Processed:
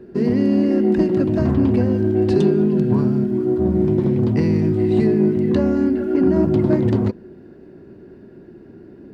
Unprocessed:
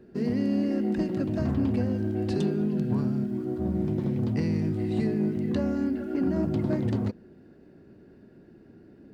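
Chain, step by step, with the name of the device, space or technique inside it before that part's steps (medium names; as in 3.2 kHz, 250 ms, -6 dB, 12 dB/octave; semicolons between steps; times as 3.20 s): inside a helmet (treble shelf 4.1 kHz -6 dB; small resonant body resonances 370/990 Hz, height 6 dB); trim +8.5 dB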